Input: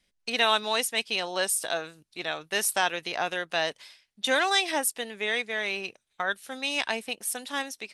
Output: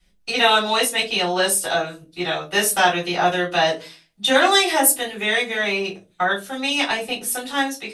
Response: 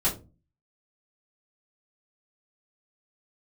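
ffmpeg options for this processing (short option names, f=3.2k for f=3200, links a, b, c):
-filter_complex "[0:a]asettb=1/sr,asplit=3[a][b][c];[a]atrim=end=4.504[d];[b]atrim=start=4.5:end=5.57,asetpts=PTS-STARTPTS,afade=t=in:d=0.004:c=qsin,afade=t=out:st=1.066:d=0.004:c=qsin,highshelf=f=10k:g=11[e];[c]atrim=start=5.566[f];[d][e]acrossfade=d=0.004:c1=hsin:c2=qsin[g];[g][f]acrossfade=d=0.004:c1=qsin:c2=hsin[h];[1:a]atrim=start_sample=2205[i];[h][i]afir=irnorm=-1:irlink=0,volume=-1.5dB"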